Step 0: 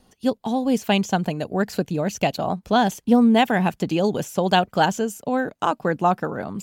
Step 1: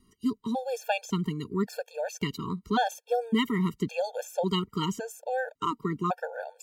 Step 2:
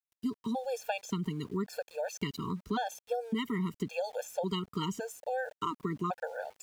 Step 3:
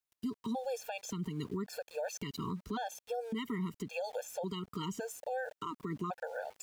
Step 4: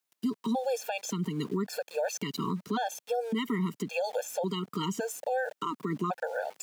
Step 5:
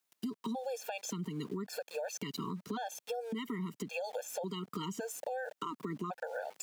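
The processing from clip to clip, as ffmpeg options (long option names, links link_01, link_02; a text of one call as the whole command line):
ffmpeg -i in.wav -af "afftfilt=real='re*gt(sin(2*PI*0.9*pts/sr)*(1-2*mod(floor(b*sr/1024/460),2)),0)':imag='im*gt(sin(2*PI*0.9*pts/sr)*(1-2*mod(floor(b*sr/1024/460),2)),0)':win_size=1024:overlap=0.75,volume=-4.5dB" out.wav
ffmpeg -i in.wav -af "aeval=exprs='val(0)*gte(abs(val(0)),0.00266)':channel_layout=same,acompressor=threshold=-27dB:ratio=6,volume=-2dB" out.wav
ffmpeg -i in.wav -af "alimiter=level_in=7.5dB:limit=-24dB:level=0:latency=1:release=196,volume=-7.5dB,volume=2.5dB" out.wav
ffmpeg -i in.wav -af "highpass=frequency=150:width=0.5412,highpass=frequency=150:width=1.3066,volume=7dB" out.wav
ffmpeg -i in.wav -af "acompressor=threshold=-40dB:ratio=3,volume=1.5dB" out.wav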